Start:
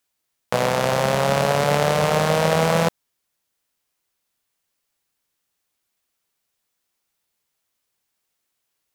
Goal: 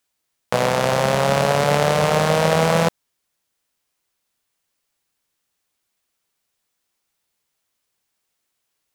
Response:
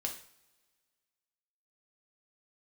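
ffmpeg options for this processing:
-af "equalizer=f=14000:w=2.2:g=-4,volume=1.19"

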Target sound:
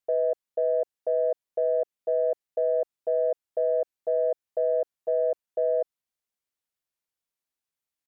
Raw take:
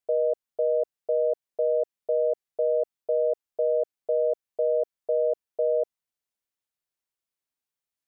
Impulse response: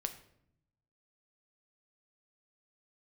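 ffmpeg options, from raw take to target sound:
-af "acontrast=83,asetrate=45392,aresample=44100,atempo=0.971532,volume=0.422"

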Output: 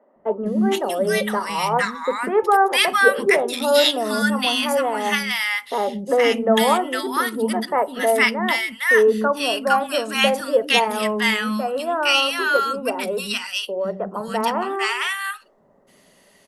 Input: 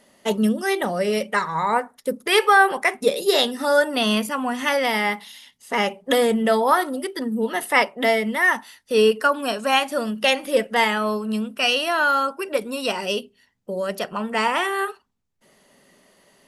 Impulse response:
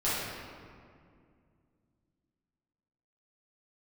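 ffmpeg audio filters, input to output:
-filter_complex "[0:a]acrossover=split=280|1200[s0][s1][s2];[s0]adelay=160[s3];[s2]adelay=460[s4];[s3][s1][s4]amix=inputs=3:normalize=0,volume=1.41"

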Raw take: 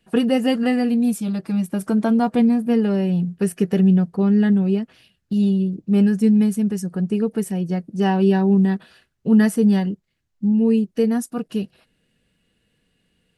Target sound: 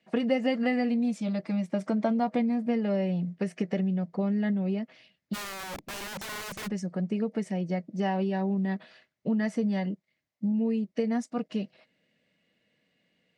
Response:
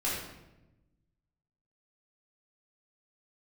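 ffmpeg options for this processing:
-filter_complex "[0:a]equalizer=f=2600:t=o:w=0.77:g=-2.5,acompressor=threshold=0.126:ratio=20,highpass=180,equalizer=f=410:t=q:w=4:g=-5,equalizer=f=600:t=q:w=4:g=9,equalizer=f=1500:t=q:w=4:g=-4,equalizer=f=2100:t=q:w=4:g=10,lowpass=f=6400:w=0.5412,lowpass=f=6400:w=1.3066,asplit=3[s0][s1][s2];[s0]afade=t=out:st=5.33:d=0.02[s3];[s1]aeval=exprs='(mod(28.2*val(0)+1,2)-1)/28.2':c=same,afade=t=in:st=5.33:d=0.02,afade=t=out:st=6.66:d=0.02[s4];[s2]afade=t=in:st=6.66:d=0.02[s5];[s3][s4][s5]amix=inputs=3:normalize=0,volume=0.631" -ar 48000 -c:a libopus -b:a 256k

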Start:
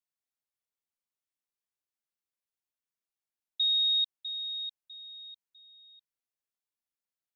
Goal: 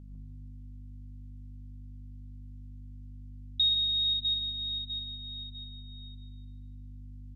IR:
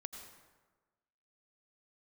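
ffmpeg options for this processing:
-filter_complex "[0:a]equalizer=f=3500:w=0.34:g=12,acompressor=threshold=0.0316:ratio=1.5,aeval=exprs='val(0)+0.00794*(sin(2*PI*50*n/s)+sin(2*PI*2*50*n/s)/2+sin(2*PI*3*50*n/s)/3+sin(2*PI*4*50*n/s)/4+sin(2*PI*5*50*n/s)/5)':c=same,asplit=2[s0][s1];[s1]adelay=152,lowpass=f=3600:p=1,volume=0.562,asplit=2[s2][s3];[s3]adelay=152,lowpass=f=3600:p=1,volume=0.52,asplit=2[s4][s5];[s5]adelay=152,lowpass=f=3600:p=1,volume=0.52,asplit=2[s6][s7];[s7]adelay=152,lowpass=f=3600:p=1,volume=0.52,asplit=2[s8][s9];[s9]adelay=152,lowpass=f=3600:p=1,volume=0.52,asplit=2[s10][s11];[s11]adelay=152,lowpass=f=3600:p=1,volume=0.52,asplit=2[s12][s13];[s13]adelay=152,lowpass=f=3600:p=1,volume=0.52[s14];[s0][s2][s4][s6][s8][s10][s12][s14]amix=inputs=8:normalize=0[s15];[1:a]atrim=start_sample=2205,asetrate=40131,aresample=44100[s16];[s15][s16]afir=irnorm=-1:irlink=0"

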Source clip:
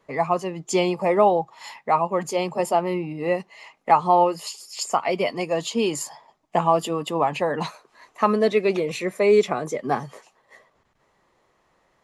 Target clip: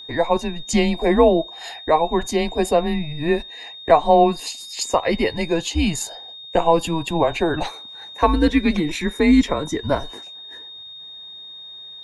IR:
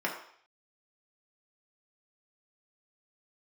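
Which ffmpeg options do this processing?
-filter_complex "[0:a]afreqshift=-160,aeval=exprs='val(0)+0.0112*sin(2*PI*3700*n/s)':c=same,asplit=2[s0][s1];[1:a]atrim=start_sample=2205,asetrate=52920,aresample=44100[s2];[s1][s2]afir=irnorm=-1:irlink=0,volume=0.0473[s3];[s0][s3]amix=inputs=2:normalize=0,volume=1.41"

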